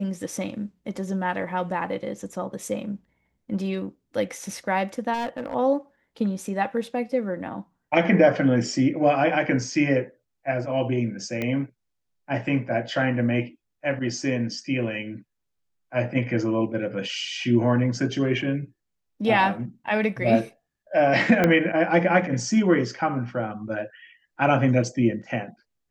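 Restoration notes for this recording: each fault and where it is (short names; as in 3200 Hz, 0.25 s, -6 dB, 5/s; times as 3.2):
5.13–5.55 clipped -25 dBFS
11.42 pop -15 dBFS
21.44 pop -7 dBFS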